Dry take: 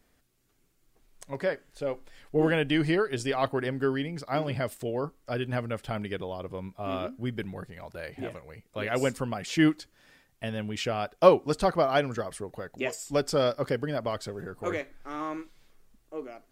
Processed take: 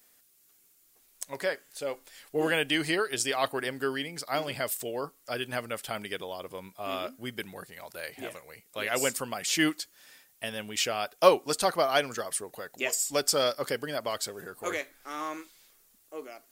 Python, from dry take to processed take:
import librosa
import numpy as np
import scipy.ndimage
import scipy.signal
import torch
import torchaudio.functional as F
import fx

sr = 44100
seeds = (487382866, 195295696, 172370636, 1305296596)

y = fx.riaa(x, sr, side='recording')